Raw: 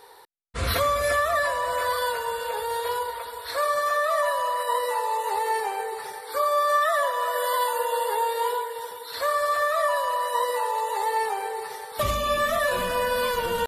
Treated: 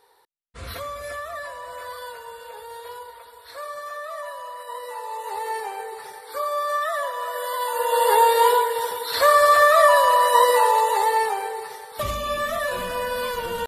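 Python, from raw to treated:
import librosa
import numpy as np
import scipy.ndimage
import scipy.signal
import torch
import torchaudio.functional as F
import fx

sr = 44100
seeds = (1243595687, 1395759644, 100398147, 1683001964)

y = fx.gain(x, sr, db=fx.line((4.68, -10.0), (5.45, -3.0), (7.58, -3.0), (8.11, 9.0), (10.68, 9.0), (11.83, -2.0)))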